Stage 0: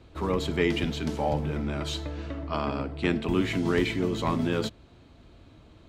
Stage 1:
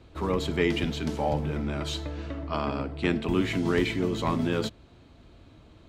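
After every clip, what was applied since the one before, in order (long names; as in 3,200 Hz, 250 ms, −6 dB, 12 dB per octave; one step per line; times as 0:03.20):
no processing that can be heard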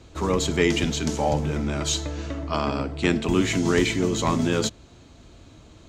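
parametric band 6,700 Hz +13.5 dB 0.74 octaves
level +4 dB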